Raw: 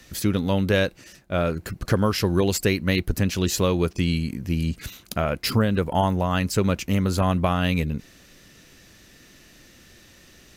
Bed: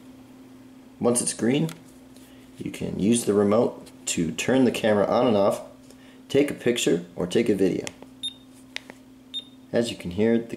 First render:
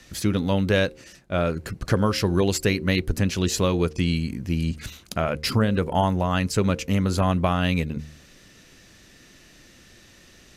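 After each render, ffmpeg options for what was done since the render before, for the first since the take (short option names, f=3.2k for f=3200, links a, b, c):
-af "lowpass=11k,bandreject=f=75.83:t=h:w=4,bandreject=f=151.66:t=h:w=4,bandreject=f=227.49:t=h:w=4,bandreject=f=303.32:t=h:w=4,bandreject=f=379.15:t=h:w=4,bandreject=f=454.98:t=h:w=4,bandreject=f=530.81:t=h:w=4"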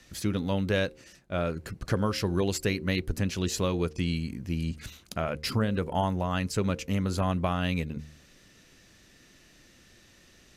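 -af "volume=-6dB"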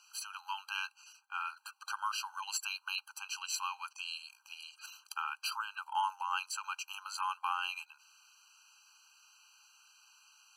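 -af "afftfilt=real='re*eq(mod(floor(b*sr/1024/800),2),1)':imag='im*eq(mod(floor(b*sr/1024/800),2),1)':win_size=1024:overlap=0.75"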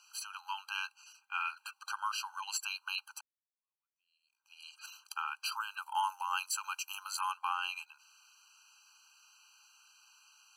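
-filter_complex "[0:a]asettb=1/sr,asplit=3[a][b][c];[a]atrim=end=1.214[d];[b]atrim=start=1.21:end=1.74,asetpts=PTS-STARTPTS,afade=t=in:d=0.004:c=qsin,afade=t=out:st=0.526:d=0.004:c=qsin,equalizer=f=2.4k:w=1.8:g=8[e];[c]atrim=start=1.736[f];[d][e]acrossfade=d=0.004:c1=hsin:c2=qsin[g];[g][f]acrossfade=d=0.004:c1=qsin:c2=hsin,asettb=1/sr,asplit=3[h][i][j];[h]atrim=end=5.564[k];[i]atrim=start=5.56:end=7.32,asetpts=PTS-STARTPTS,afade=t=in:d=0.004:c=qsin,afade=t=out:st=1.756:d=0.004:c=qsin,equalizer=f=14k:w=0.46:g=11[l];[j]atrim=start=7.316[m];[k][l]acrossfade=d=0.004:c1=hsin:c2=qsin[n];[n][m]acrossfade=d=0.004:c1=qsin:c2=hsin,asplit=2[o][p];[o]atrim=end=3.21,asetpts=PTS-STARTPTS,afade=t=out:st=3.206:d=0.004:c=hsin[q];[p]atrim=start=3.21,asetpts=PTS-STARTPTS,afade=t=in:d=1.47:c=exp[r];[q][r]concat=n=2:v=0:a=1"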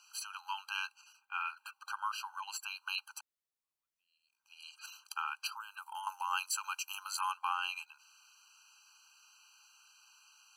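-filter_complex "[0:a]asettb=1/sr,asplit=3[a][b][c];[a]atrim=end=1.014[d];[b]atrim=start=1.01:end=2.77,asetpts=PTS-STARTPTS,afade=t=in:d=0.004:c=qsin,afade=t=out:st=1.756:d=0.004:c=qsin,equalizer=f=6.2k:t=o:w=2.4:g=-6.5[e];[c]atrim=start=2.766[f];[d][e]acrossfade=d=0.004:c1=hsin:c2=qsin[g];[g][f]acrossfade=d=0.004:c1=qsin:c2=hsin,asettb=1/sr,asplit=3[h][i][j];[h]atrim=end=5.474[k];[i]atrim=start=5.47:end=6.07,asetpts=PTS-STARTPTS,afade=t=in:d=0.004:c=qsin,afade=t=out:st=0.596:d=0.004:c=qsin,acrossover=split=1400|7500[l][m][n];[l]acompressor=threshold=-46dB:ratio=4[o];[m]acompressor=threshold=-51dB:ratio=4[p];[n]acompressor=threshold=-59dB:ratio=4[q];[o][p][q]amix=inputs=3:normalize=0[r];[j]atrim=start=6.066[s];[k][r]acrossfade=d=0.004:c1=hsin:c2=qsin[t];[t][s]acrossfade=d=0.004:c1=qsin:c2=hsin"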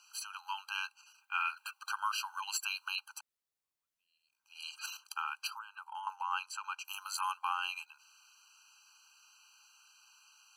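-filter_complex "[0:a]asettb=1/sr,asplit=3[a][b][c];[a]atrim=end=1.184[d];[b]atrim=start=1.18:end=2.88,asetpts=PTS-STARTPTS,afade=t=in:d=0.004:c=qsin,afade=t=out:st=1.696:d=0.004:c=qsin,tiltshelf=f=760:g=-6.5[e];[c]atrim=start=2.876[f];[d][e]acrossfade=d=0.004:c1=hsin:c2=qsin[g];[g][f]acrossfade=d=0.004:c1=qsin:c2=hsin,asettb=1/sr,asplit=3[h][i][j];[h]atrim=end=5.594[k];[i]atrim=start=5.59:end=6.85,asetpts=PTS-STARTPTS,afade=t=in:d=0.004:c=qsin,afade=t=out:st=1.256:d=0.004:c=qsin,aemphasis=mode=reproduction:type=75fm[l];[j]atrim=start=6.846[m];[k][l]acrossfade=d=0.004:c1=hsin:c2=qsin[n];[n][m]acrossfade=d=0.004:c1=qsin:c2=hsin,asplit=3[o][p][q];[o]atrim=end=4.552[r];[p]atrim=start=4.548:end=4.972,asetpts=PTS-STARTPTS,volume=7dB[s];[q]atrim=start=4.968[t];[r][s]acrossfade=d=0.004:c1=hsin:c2=hsin[u];[u][t]acrossfade=d=0.004:c1=hsin:c2=hsin"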